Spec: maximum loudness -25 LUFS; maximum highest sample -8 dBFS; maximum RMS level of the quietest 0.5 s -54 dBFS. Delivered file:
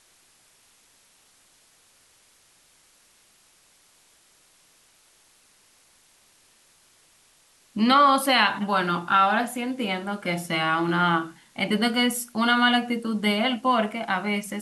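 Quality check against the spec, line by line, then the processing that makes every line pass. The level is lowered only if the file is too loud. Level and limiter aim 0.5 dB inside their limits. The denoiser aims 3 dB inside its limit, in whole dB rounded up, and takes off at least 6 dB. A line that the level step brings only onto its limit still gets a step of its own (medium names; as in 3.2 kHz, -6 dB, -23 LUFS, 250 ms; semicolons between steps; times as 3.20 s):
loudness -22.5 LUFS: fail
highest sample -7.0 dBFS: fail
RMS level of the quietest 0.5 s -60 dBFS: pass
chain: trim -3 dB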